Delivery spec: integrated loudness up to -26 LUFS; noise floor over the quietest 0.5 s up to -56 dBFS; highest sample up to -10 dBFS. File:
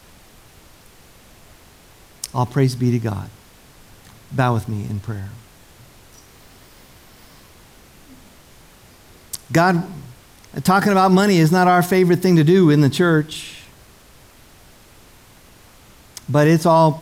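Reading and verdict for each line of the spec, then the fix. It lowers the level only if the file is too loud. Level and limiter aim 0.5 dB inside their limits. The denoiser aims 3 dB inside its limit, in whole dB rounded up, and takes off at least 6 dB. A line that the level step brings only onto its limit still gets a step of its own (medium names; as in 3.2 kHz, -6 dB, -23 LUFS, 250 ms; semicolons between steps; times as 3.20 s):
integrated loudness -16.5 LUFS: fail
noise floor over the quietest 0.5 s -47 dBFS: fail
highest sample -5.5 dBFS: fail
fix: trim -10 dB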